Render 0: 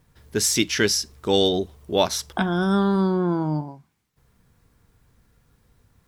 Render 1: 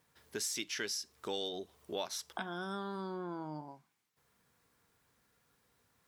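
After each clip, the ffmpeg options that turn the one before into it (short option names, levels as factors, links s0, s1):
-af "highpass=f=580:p=1,acompressor=threshold=0.0178:ratio=2.5,volume=0.562"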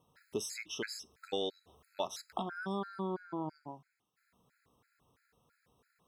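-af "highshelf=f=2900:g=-9,afftfilt=real='re*gt(sin(2*PI*3*pts/sr)*(1-2*mod(floor(b*sr/1024/1300),2)),0)':imag='im*gt(sin(2*PI*3*pts/sr)*(1-2*mod(floor(b*sr/1024/1300),2)),0)':win_size=1024:overlap=0.75,volume=1.88"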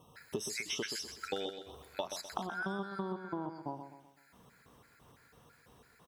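-filter_complex "[0:a]acompressor=threshold=0.00562:ratio=12,asplit=2[s0][s1];[s1]aecho=0:1:127|254|381|508|635:0.376|0.162|0.0695|0.0299|0.0128[s2];[s0][s2]amix=inputs=2:normalize=0,volume=3.35"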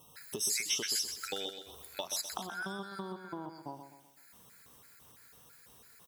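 -af "crystalizer=i=4.5:c=0,volume=0.631"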